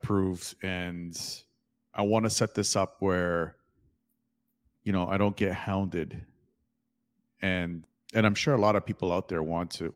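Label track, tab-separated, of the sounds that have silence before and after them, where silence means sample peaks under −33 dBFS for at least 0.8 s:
4.870000	6.190000	sound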